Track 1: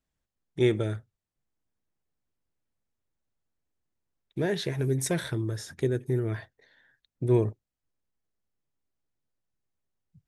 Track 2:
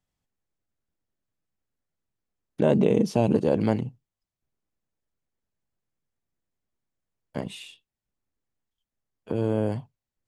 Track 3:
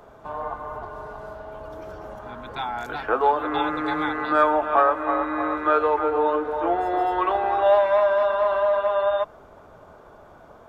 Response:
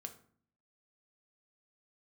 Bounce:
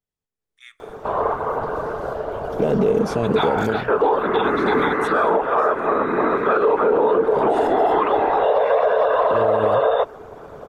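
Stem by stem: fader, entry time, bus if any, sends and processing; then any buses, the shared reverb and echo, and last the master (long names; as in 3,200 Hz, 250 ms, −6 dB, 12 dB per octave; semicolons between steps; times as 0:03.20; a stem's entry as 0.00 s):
−17.0 dB, 0.00 s, no send, Chebyshev high-pass filter 1,100 Hz, order 8; amplitude modulation by smooth noise, depth 55%
−9.5 dB, 0.00 s, no send, brickwall limiter −12.5 dBFS, peak gain reduction 4.5 dB
−2.5 dB, 0.80 s, no send, random phases in short frames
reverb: not used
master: automatic gain control gain up to 11.5 dB; parametric band 440 Hz +11.5 dB 0.22 octaves; brickwall limiter −9 dBFS, peak gain reduction 10 dB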